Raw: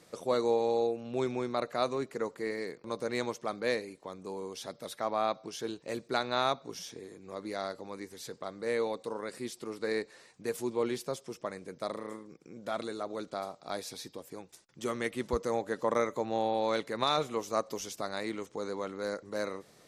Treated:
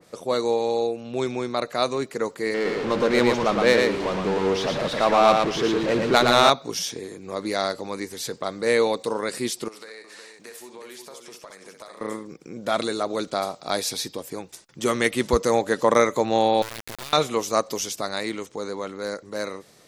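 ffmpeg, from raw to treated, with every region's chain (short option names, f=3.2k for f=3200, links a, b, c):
-filter_complex "[0:a]asettb=1/sr,asplit=3[a][b][c];[a]atrim=end=2.544[d];[b]atrim=start=2.54:end=6.5,asetpts=PTS-STARTPTS,afade=t=in:d=0.004:c=qsin,afade=t=out:st=3.956:d=0.004:c=qsin,aeval=exprs='val(0)+0.5*0.0188*sgn(val(0))':c=same,adynamicsmooth=sensitivity=2.5:basefreq=2.2k,aecho=1:1:115:0.668,atrim=end_sample=174636[e];[c]atrim=start=6.496[f];[d][e]acrossfade=d=0.004:c1=hsin:c2=qsin[g];[g][f]acrossfade=d=0.004:c1=qsin:c2=hsin,asettb=1/sr,asplit=3[h][i][j];[h]atrim=end=9.684[k];[i]atrim=start=9.68:end=12.01,asetpts=PTS-STARTPTS,afade=t=in:d=0.004:c=qsin,afade=t=out:st=2.326:d=0.004:c=qsin,highpass=f=1.1k:p=1,acompressor=threshold=-51dB:ratio=5:attack=3.2:release=140:knee=1:detection=peak,aecho=1:1:62|364:0.398|0.473,atrim=end_sample=102753[l];[j]atrim=start=12.006[m];[k][l]acrossfade=d=0.004:c1=hsin:c2=qsin[n];[n][m]acrossfade=d=0.004:c1=qsin:c2=hsin,asettb=1/sr,asplit=3[o][p][q];[o]atrim=end=16.624[r];[p]atrim=start=16.62:end=17.13,asetpts=PTS-STARTPTS,afade=t=in:d=0.004:c=qsin,afade=t=out:st=0.506:d=0.004:c=qsin,equalizer=f=90:w=2.6:g=-10.5,acompressor=threshold=-41dB:ratio=8:attack=3.2:release=140:knee=1:detection=peak,acrusher=bits=4:dc=4:mix=0:aa=0.000001[s];[q]atrim=start=17.126[t];[r][s]acrossfade=d=0.004:c1=hsin:c2=qsin[u];[u][t]acrossfade=d=0.004:c1=qsin:c2=hsin,dynaudnorm=f=160:g=31:m=6dB,adynamicequalizer=threshold=0.00794:dfrequency=2100:dqfactor=0.7:tfrequency=2100:tqfactor=0.7:attack=5:release=100:ratio=0.375:range=2.5:mode=boostabove:tftype=highshelf,volume=5dB"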